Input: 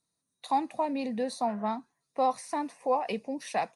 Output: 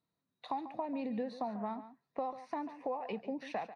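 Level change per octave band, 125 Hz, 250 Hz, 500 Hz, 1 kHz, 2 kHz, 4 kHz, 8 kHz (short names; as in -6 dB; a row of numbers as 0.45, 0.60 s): n/a, -5.5 dB, -8.0 dB, -10.0 dB, -8.5 dB, -11.0 dB, under -20 dB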